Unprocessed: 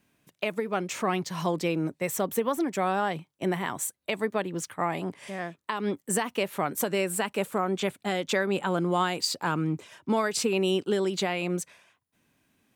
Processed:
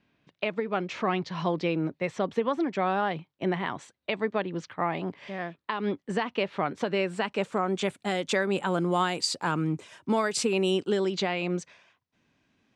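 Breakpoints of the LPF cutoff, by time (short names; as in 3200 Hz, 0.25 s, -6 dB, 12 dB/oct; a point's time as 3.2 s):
LPF 24 dB/oct
7 s 4500 Hz
7.97 s 10000 Hz
10.67 s 10000 Hz
11.18 s 5900 Hz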